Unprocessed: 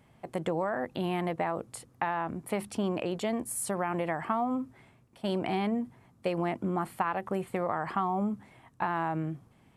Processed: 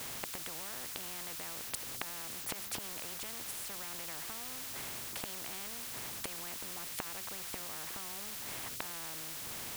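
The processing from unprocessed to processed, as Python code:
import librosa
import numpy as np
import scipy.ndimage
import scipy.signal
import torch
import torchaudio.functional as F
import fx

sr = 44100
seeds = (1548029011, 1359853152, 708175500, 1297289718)

y = fx.gate_flip(x, sr, shuts_db=-29.0, range_db=-26)
y = fx.dmg_noise_colour(y, sr, seeds[0], colour='white', level_db=-69.0)
y = fx.spectral_comp(y, sr, ratio=4.0)
y = y * 10.0 ** (5.5 / 20.0)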